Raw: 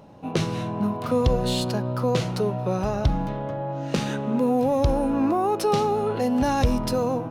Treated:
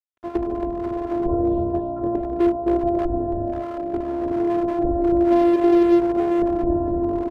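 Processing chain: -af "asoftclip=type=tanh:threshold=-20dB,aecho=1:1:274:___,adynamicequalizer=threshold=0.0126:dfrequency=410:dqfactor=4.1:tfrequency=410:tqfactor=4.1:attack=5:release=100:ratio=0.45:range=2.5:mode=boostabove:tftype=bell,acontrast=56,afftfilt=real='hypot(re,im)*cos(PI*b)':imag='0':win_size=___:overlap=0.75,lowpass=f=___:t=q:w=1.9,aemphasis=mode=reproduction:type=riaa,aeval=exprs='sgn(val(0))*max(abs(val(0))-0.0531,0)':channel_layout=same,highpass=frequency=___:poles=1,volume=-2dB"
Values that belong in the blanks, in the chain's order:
0.501, 512, 610, 95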